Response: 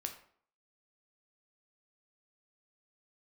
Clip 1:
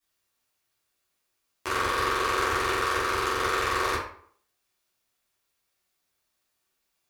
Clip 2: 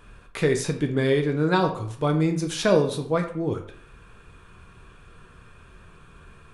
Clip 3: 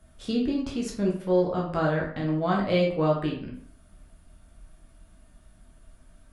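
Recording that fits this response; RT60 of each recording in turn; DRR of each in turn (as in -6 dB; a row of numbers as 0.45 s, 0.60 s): 2; 0.55 s, 0.55 s, 0.55 s; -11.5 dB, 4.0 dB, -3.0 dB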